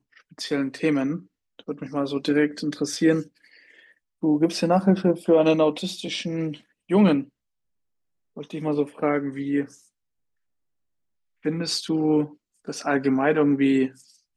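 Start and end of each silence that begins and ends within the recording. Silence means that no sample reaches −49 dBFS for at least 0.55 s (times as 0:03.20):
0:07.29–0:08.37
0:09.85–0:11.44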